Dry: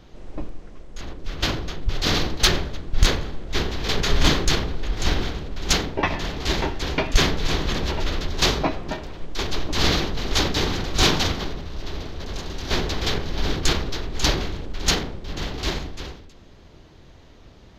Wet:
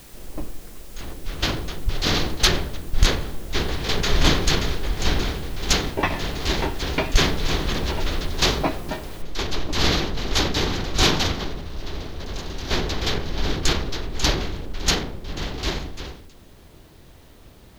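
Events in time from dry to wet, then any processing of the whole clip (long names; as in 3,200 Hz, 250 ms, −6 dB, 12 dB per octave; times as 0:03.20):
0:03.10–0:04.14: delay throw 580 ms, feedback 75%, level −6.5 dB
0:09.22: noise floor change −48 dB −61 dB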